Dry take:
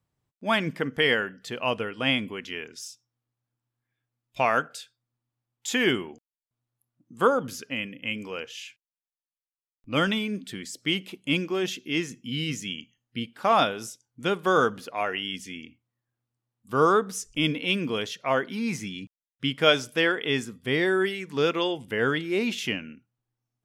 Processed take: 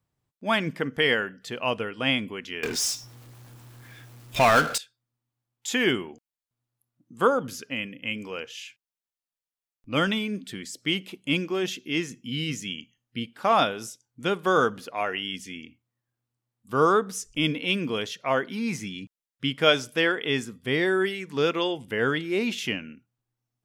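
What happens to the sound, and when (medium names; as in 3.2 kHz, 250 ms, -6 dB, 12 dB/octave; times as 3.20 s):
2.63–4.78 s: power-law waveshaper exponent 0.5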